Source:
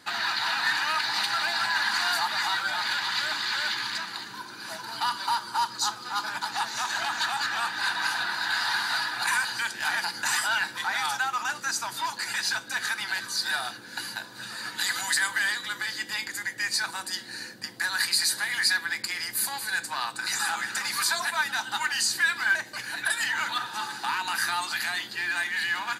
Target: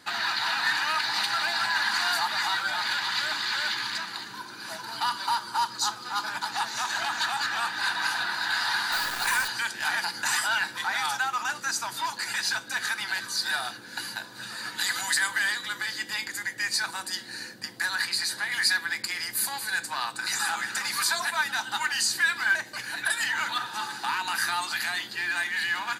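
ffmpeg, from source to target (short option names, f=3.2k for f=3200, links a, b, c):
-filter_complex "[0:a]asettb=1/sr,asplit=3[a][b][c];[a]atrim=end=8.924[d];[b]atrim=start=8.92:end=9.48,asetpts=PTS-STARTPTS,afade=t=in:d=0.004:c=qsin,afade=t=out:st=0.556:d=0.004:c=qsin,acrusher=bits=6:dc=4:mix=0:aa=0.000001[e];[c]atrim=start=9.476[f];[d][e]acrossfade=d=0.004:c1=hsin:c2=qsin[g];[g][f]acrossfade=d=0.004:c1=qsin:c2=hsin,asettb=1/sr,asplit=3[h][i][j];[h]atrim=end=17.954[k];[i]atrim=start=17.95:end=18.52,asetpts=PTS-STARTPTS,afade=t=in:d=0.004:c=qsin,afade=t=out:st=0.566:d=0.004:c=qsin,highshelf=f=5.9k:g=-9.5[l];[j]atrim=start=18.516[m];[k][l]acrossfade=d=0.004:c1=hsin:c2=qsin[n];[n][m]acrossfade=d=0.004:c1=qsin:c2=hsin"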